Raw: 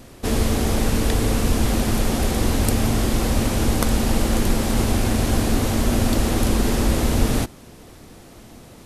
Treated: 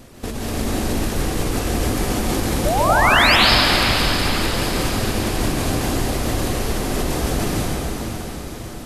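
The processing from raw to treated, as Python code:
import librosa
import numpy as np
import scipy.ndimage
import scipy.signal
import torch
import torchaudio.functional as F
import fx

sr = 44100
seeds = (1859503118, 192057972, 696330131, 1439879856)

p1 = fx.dereverb_blind(x, sr, rt60_s=0.59)
p2 = fx.over_compress(p1, sr, threshold_db=-24.0, ratio=-1.0)
p3 = fx.spec_paint(p2, sr, seeds[0], shape='rise', start_s=2.65, length_s=0.71, low_hz=550.0, high_hz=5400.0, level_db=-17.0)
p4 = p3 + fx.echo_diffused(p3, sr, ms=535, feedback_pct=52, wet_db=-8, dry=0)
p5 = fx.rev_plate(p4, sr, seeds[1], rt60_s=2.8, hf_ratio=0.9, predelay_ms=120, drr_db=-6.0)
y = F.gain(torch.from_numpy(p5), -3.5).numpy()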